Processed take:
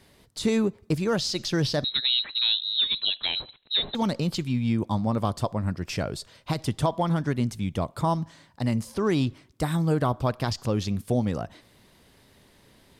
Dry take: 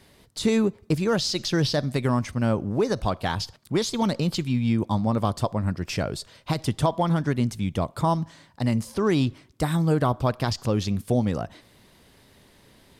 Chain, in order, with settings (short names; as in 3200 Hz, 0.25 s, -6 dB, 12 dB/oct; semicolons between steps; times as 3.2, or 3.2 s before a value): 1.84–3.95 inverted band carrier 4000 Hz; gain -2 dB